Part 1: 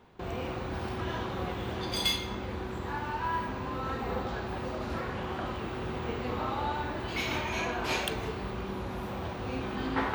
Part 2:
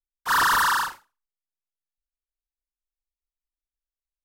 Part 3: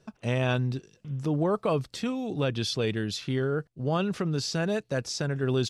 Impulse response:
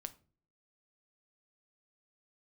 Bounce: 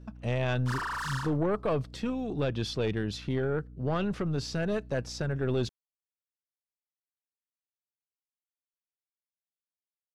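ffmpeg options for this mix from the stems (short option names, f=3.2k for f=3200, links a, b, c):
-filter_complex "[1:a]acrossover=split=1500[a][b];[a]aeval=exprs='val(0)*(1-0.7/2+0.7/2*cos(2*PI*2.1*n/s))':c=same[c];[b]aeval=exprs='val(0)*(1-0.7/2-0.7/2*cos(2*PI*2.1*n/s))':c=same[d];[c][d]amix=inputs=2:normalize=0,lowpass=7.6k,asoftclip=type=tanh:threshold=-23.5dB,adelay=400,volume=-6dB[e];[2:a]highshelf=f=3.5k:g=-9,aeval=exprs='val(0)+0.00501*(sin(2*PI*60*n/s)+sin(2*PI*2*60*n/s)/2+sin(2*PI*3*60*n/s)/3+sin(2*PI*4*60*n/s)/4+sin(2*PI*5*60*n/s)/5)':c=same,volume=-0.5dB,asplit=2[f][g];[g]volume=-12.5dB[h];[3:a]atrim=start_sample=2205[i];[h][i]afir=irnorm=-1:irlink=0[j];[e][f][j]amix=inputs=3:normalize=0,aeval=exprs='(tanh(11.2*val(0)+0.4)-tanh(0.4))/11.2':c=same"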